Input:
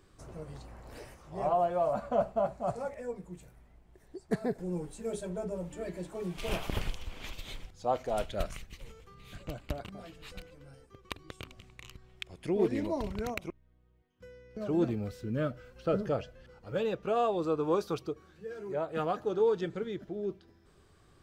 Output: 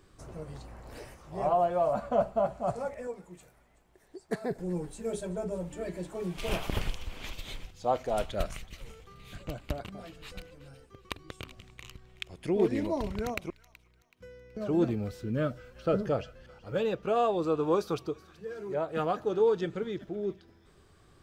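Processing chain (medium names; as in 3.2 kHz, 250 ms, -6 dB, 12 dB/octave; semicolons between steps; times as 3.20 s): 3.07–4.51 s: bass shelf 220 Hz -12 dB; feedback echo behind a high-pass 376 ms, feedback 36%, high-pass 1.6 kHz, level -17.5 dB; trim +2 dB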